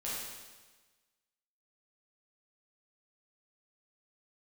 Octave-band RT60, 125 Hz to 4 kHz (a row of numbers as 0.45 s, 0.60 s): 1.3 s, 1.3 s, 1.3 s, 1.3 s, 1.3 s, 1.3 s